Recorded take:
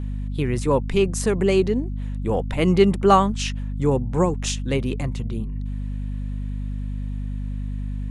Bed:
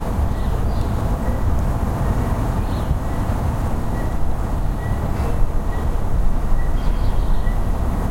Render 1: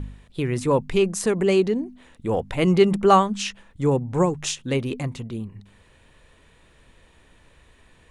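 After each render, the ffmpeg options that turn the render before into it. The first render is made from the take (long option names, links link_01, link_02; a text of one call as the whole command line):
ffmpeg -i in.wav -af "bandreject=frequency=50:width_type=h:width=4,bandreject=frequency=100:width_type=h:width=4,bandreject=frequency=150:width_type=h:width=4,bandreject=frequency=200:width_type=h:width=4,bandreject=frequency=250:width_type=h:width=4" out.wav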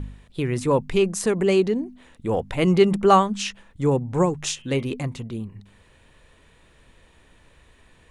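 ffmpeg -i in.wav -filter_complex "[0:a]asettb=1/sr,asplit=3[link_01][link_02][link_03];[link_01]atrim=end=4.444[link_04];[link_02]atrim=start=4.44:end=4.85,asetpts=PTS-STARTPTS,afade=type=in:duration=0.004:curve=qsin,afade=type=out:start_time=0.406:duration=0.004:curve=qsin,bandreject=frequency=122:width_type=h:width=4,bandreject=frequency=244:width_type=h:width=4,bandreject=frequency=366:width_type=h:width=4,bandreject=frequency=488:width_type=h:width=4,bandreject=frequency=610:width_type=h:width=4,bandreject=frequency=732:width_type=h:width=4,bandreject=frequency=854:width_type=h:width=4,bandreject=frequency=976:width_type=h:width=4,bandreject=frequency=1098:width_type=h:width=4,bandreject=frequency=1220:width_type=h:width=4,bandreject=frequency=1342:width_type=h:width=4,bandreject=frequency=1464:width_type=h:width=4,bandreject=frequency=1586:width_type=h:width=4,bandreject=frequency=1708:width_type=h:width=4,bandreject=frequency=1830:width_type=h:width=4,bandreject=frequency=1952:width_type=h:width=4,bandreject=frequency=2074:width_type=h:width=4,bandreject=frequency=2196:width_type=h:width=4,bandreject=frequency=2318:width_type=h:width=4,bandreject=frequency=2440:width_type=h:width=4,bandreject=frequency=2562:width_type=h:width=4,bandreject=frequency=2684:width_type=h:width=4,bandreject=frequency=2806:width_type=h:width=4,bandreject=frequency=2928:width_type=h:width=4,bandreject=frequency=3050:width_type=h:width=4,bandreject=frequency=3172:width_type=h:width=4,bandreject=frequency=3294:width_type=h:width=4[link_05];[link_03]atrim=start=4.846[link_06];[link_04][link_05]acrossfade=duration=0.004:curve1=hsin:curve2=qsin[link_07];[link_07][link_06]acrossfade=duration=0.004:curve1=qsin:curve2=hsin" out.wav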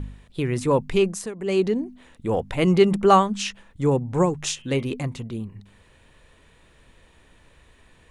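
ffmpeg -i in.wav -filter_complex "[0:a]asplit=3[link_01][link_02][link_03];[link_01]atrim=end=1.31,asetpts=PTS-STARTPTS,afade=type=out:start_time=1.05:duration=0.26:silence=0.223872[link_04];[link_02]atrim=start=1.31:end=1.39,asetpts=PTS-STARTPTS,volume=-13dB[link_05];[link_03]atrim=start=1.39,asetpts=PTS-STARTPTS,afade=type=in:duration=0.26:silence=0.223872[link_06];[link_04][link_05][link_06]concat=n=3:v=0:a=1" out.wav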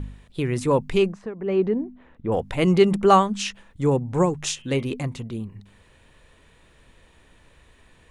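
ffmpeg -i in.wav -filter_complex "[0:a]asettb=1/sr,asplit=3[link_01][link_02][link_03];[link_01]atrim=end=1.134[link_04];[link_02]atrim=start=1.13:end=2.32,asetpts=PTS-STARTPTS,afade=type=in:duration=0.004:curve=qsin,afade=type=out:start_time=1.186:duration=0.004:curve=qsin,lowpass=1700[link_05];[link_03]atrim=start=2.316[link_06];[link_04][link_05]acrossfade=duration=0.004:curve1=hsin:curve2=qsin[link_07];[link_07][link_06]acrossfade=duration=0.004:curve1=qsin:curve2=hsin" out.wav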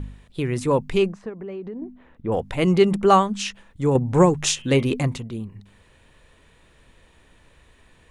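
ffmpeg -i in.wav -filter_complex "[0:a]asettb=1/sr,asplit=3[link_01][link_02][link_03];[link_01]atrim=end=1.294[link_04];[link_02]atrim=start=1.29:end=1.82,asetpts=PTS-STARTPTS,afade=type=in:duration=0.004:curve=qsin,afade=type=out:start_time=0.526:duration=0.004:curve=qsin,acompressor=threshold=-30dB:ratio=8:attack=3.2:release=140:knee=1:detection=peak[link_05];[link_03]atrim=start=1.816[link_06];[link_04][link_05]acrossfade=duration=0.004:curve1=hsin:curve2=qsin[link_07];[link_07][link_06]acrossfade=duration=0.004:curve1=qsin:curve2=hsin,asettb=1/sr,asplit=3[link_08][link_09][link_10];[link_08]atrim=end=3.954[link_11];[link_09]atrim=start=3.95:end=5.18,asetpts=PTS-STARTPTS,afade=type=in:duration=0.004:curve=qsin,afade=type=out:start_time=1.226:duration=0.004:curve=qsin,acontrast=37[link_12];[link_10]atrim=start=5.176[link_13];[link_11][link_12]acrossfade=duration=0.004:curve1=hsin:curve2=qsin[link_14];[link_14][link_13]acrossfade=duration=0.004:curve1=qsin:curve2=hsin" out.wav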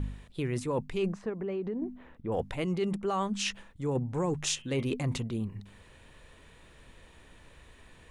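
ffmpeg -i in.wav -af "alimiter=limit=-11.5dB:level=0:latency=1:release=412,areverse,acompressor=threshold=-28dB:ratio=6,areverse" out.wav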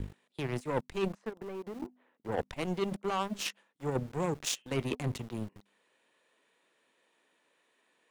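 ffmpeg -i in.wav -filter_complex "[0:a]aeval=exprs='0.158*(cos(1*acos(clip(val(0)/0.158,-1,1)))-cos(1*PI/2))+0.00158*(cos(6*acos(clip(val(0)/0.158,-1,1)))-cos(6*PI/2))+0.0178*(cos(7*acos(clip(val(0)/0.158,-1,1)))-cos(7*PI/2))':channel_layout=same,acrossover=split=250|4100[link_01][link_02][link_03];[link_01]aeval=exprs='val(0)*gte(abs(val(0)),0.00398)':channel_layout=same[link_04];[link_04][link_02][link_03]amix=inputs=3:normalize=0" out.wav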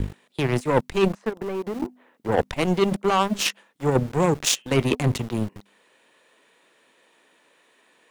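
ffmpeg -i in.wav -af "volume=12dB" out.wav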